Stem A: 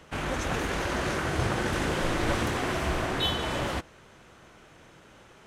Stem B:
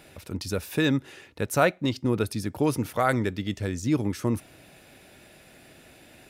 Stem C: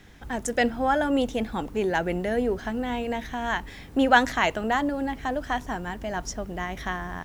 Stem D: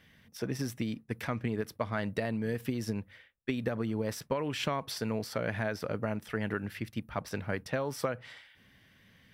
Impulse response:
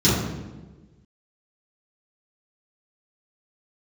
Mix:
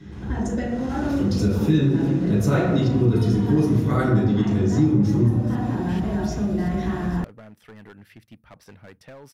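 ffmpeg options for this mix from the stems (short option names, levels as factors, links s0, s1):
-filter_complex "[0:a]acompressor=threshold=0.0224:ratio=6,volume=0.447,afade=t=in:st=0.67:d=0.29:silence=0.266073,asplit=2[s0][s1];[s1]volume=0.178[s2];[1:a]adelay=900,volume=0.335,asplit=2[s3][s4];[s4]volume=0.668[s5];[2:a]lowpass=f=2300:p=1,acompressor=threshold=0.0224:ratio=6,volume=0.447,asplit=2[s6][s7];[s7]volume=0.531[s8];[3:a]asoftclip=type=hard:threshold=0.0316,adelay=1350,volume=0.376[s9];[4:a]atrim=start_sample=2205[s10];[s2][s5][s8]amix=inputs=3:normalize=0[s11];[s11][s10]afir=irnorm=-1:irlink=0[s12];[s0][s3][s6][s9][s12]amix=inputs=5:normalize=0,acompressor=threshold=0.1:ratio=2.5"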